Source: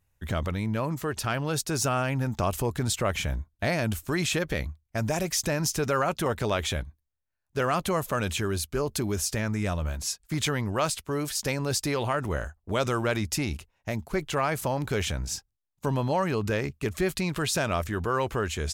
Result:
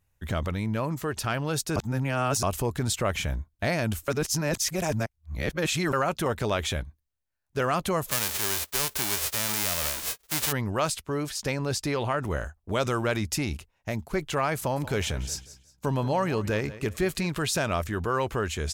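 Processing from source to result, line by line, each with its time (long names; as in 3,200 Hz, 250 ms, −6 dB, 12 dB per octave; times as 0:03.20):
0:01.76–0:02.43: reverse
0:04.08–0:05.93: reverse
0:08.10–0:10.51: spectral envelope flattened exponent 0.1
0:11.05–0:12.23: high-shelf EQ 8,000 Hz −8.5 dB
0:14.58–0:17.27: repeating echo 181 ms, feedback 30%, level −16 dB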